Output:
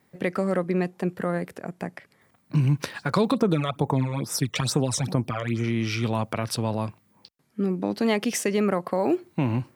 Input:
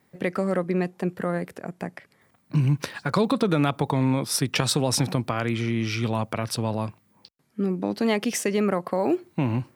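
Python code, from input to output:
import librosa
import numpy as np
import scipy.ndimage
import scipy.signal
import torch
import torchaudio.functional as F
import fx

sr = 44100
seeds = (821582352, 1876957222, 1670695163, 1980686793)

y = fx.phaser_stages(x, sr, stages=12, low_hz=250.0, high_hz=4400.0, hz=2.3, feedback_pct=25, at=(3.34, 5.64))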